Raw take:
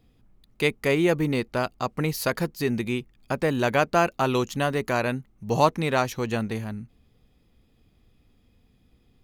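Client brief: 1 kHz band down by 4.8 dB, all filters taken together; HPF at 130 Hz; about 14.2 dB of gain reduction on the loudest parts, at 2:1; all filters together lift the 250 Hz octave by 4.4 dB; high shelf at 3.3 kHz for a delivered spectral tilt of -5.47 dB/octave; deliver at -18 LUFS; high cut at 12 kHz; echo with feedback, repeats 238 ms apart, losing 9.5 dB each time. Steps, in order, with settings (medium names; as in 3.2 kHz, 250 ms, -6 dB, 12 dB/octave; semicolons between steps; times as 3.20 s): high-pass 130 Hz; low-pass 12 kHz; peaking EQ 250 Hz +6.5 dB; peaking EQ 1 kHz -7.5 dB; treble shelf 3.3 kHz +3 dB; compression 2:1, threshold -43 dBFS; feedback delay 238 ms, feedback 33%, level -9.5 dB; trim +19 dB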